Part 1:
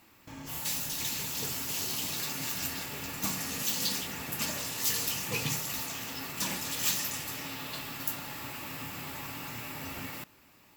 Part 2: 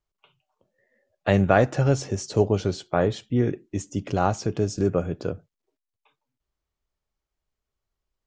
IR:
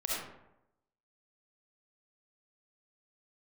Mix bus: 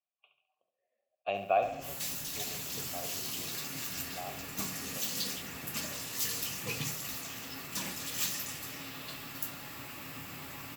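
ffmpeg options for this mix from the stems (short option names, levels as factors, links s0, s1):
-filter_complex "[0:a]bandreject=f=890:w=12,adelay=1350,volume=0.631[s0];[1:a]asplit=3[s1][s2][s3];[s1]bandpass=f=730:t=q:w=8,volume=1[s4];[s2]bandpass=f=1090:t=q:w=8,volume=0.501[s5];[s3]bandpass=f=2440:t=q:w=8,volume=0.355[s6];[s4][s5][s6]amix=inputs=3:normalize=0,highshelf=f=2000:t=q:w=1.5:g=8,volume=0.794,afade=t=out:st=1.57:d=0.28:silence=0.281838,asplit=2[s7][s8];[s8]volume=0.376,aecho=0:1:70|140|210|280|350|420:1|0.45|0.202|0.0911|0.041|0.0185[s9];[s0][s7][s9]amix=inputs=3:normalize=0"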